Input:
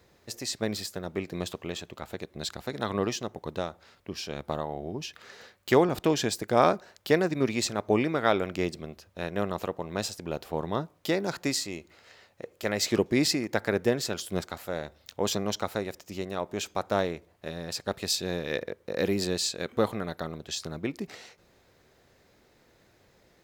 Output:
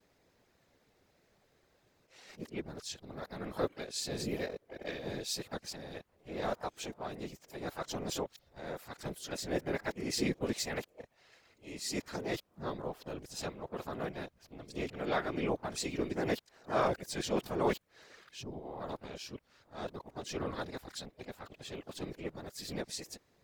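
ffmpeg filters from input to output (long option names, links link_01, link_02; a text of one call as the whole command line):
ffmpeg -i in.wav -filter_complex "[0:a]areverse,afftfilt=real='hypot(re,im)*cos(2*PI*random(0))':imag='hypot(re,im)*sin(2*PI*random(1))':win_size=512:overlap=0.75,asplit=2[link_01][link_02];[link_02]asetrate=55563,aresample=44100,atempo=0.793701,volume=-9dB[link_03];[link_01][link_03]amix=inputs=2:normalize=0,volume=-3dB" out.wav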